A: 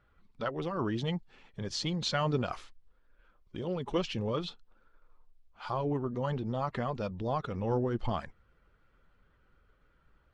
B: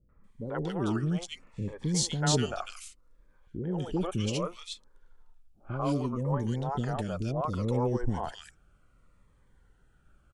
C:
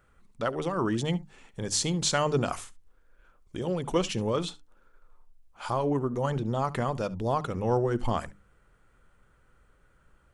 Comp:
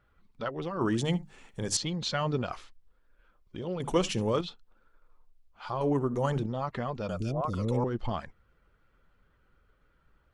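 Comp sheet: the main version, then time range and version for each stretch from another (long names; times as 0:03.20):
A
0:00.81–0:01.77: punch in from C
0:03.80–0:04.41: punch in from C
0:05.81–0:06.46: punch in from C
0:07.09–0:07.84: punch in from B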